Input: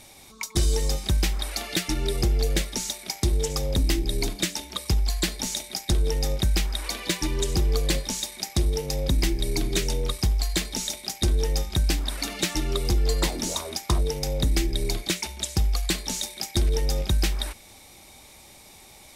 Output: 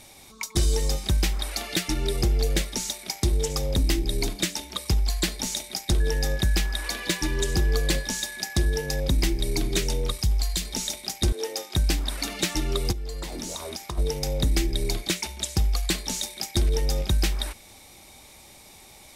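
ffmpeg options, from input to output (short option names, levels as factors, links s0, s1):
-filter_complex "[0:a]asettb=1/sr,asplit=3[s0][s1][s2];[s0]atrim=end=6.004[s3];[s1]atrim=start=6:end=9,asetpts=PTS-STARTPTS,afade=t=in:d=0.004:c=qsin,afade=t=out:st=2.996:d=0.004:c=qsin,aeval=exprs='val(0)+0.0141*sin(2*PI*1700*n/s)':c=same[s4];[s2]atrim=start=8.996[s5];[s3][s4]acrossfade=d=0.004:c1=hsin:c2=qsin[s6];[s6][s5]acrossfade=d=0.004:c1=qsin:c2=hsin,asettb=1/sr,asplit=3[s7][s8][s9];[s7]atrim=end=10.114[s10];[s8]atrim=start=10.11:end=10.74,asetpts=PTS-STARTPTS,afade=t=in:d=0.004:c=qsin,afade=t=out:st=0.626:d=0.004:c=qsin,acrossover=split=180|3000[s11][s12][s13];[s12]acompressor=threshold=0.0112:ratio=4:attack=3.2:release=140:knee=2.83:detection=peak[s14];[s11][s14][s13]amix=inputs=3:normalize=0[s15];[s9]atrim=start=10.736[s16];[s10][s15]acrossfade=d=0.004:c1=hsin:c2=qsin[s17];[s17][s16]acrossfade=d=0.004:c1=qsin:c2=hsin,asettb=1/sr,asplit=3[s18][s19][s20];[s18]atrim=end=11.324[s21];[s19]atrim=start=11.32:end=11.75,asetpts=PTS-STARTPTS,afade=t=in:d=0.004:c=qsin,afade=t=out:st=0.426:d=0.004:c=qsin,highpass=f=310:w=0.5412,highpass=f=310:w=1.3066[s22];[s20]atrim=start=11.746[s23];[s21][s22]acrossfade=d=0.004:c1=hsin:c2=qsin[s24];[s24][s23]acrossfade=d=0.004:c1=qsin:c2=hsin,asplit=3[s25][s26][s27];[s25]afade=t=out:st=12.91:d=0.02[s28];[s26]acompressor=threshold=0.0355:ratio=10:attack=3.2:release=140:knee=1:detection=peak,afade=t=in:st=12.91:d=0.02,afade=t=out:st=13.97:d=0.02[s29];[s27]afade=t=in:st=13.97:d=0.02[s30];[s28][s29][s30]amix=inputs=3:normalize=0"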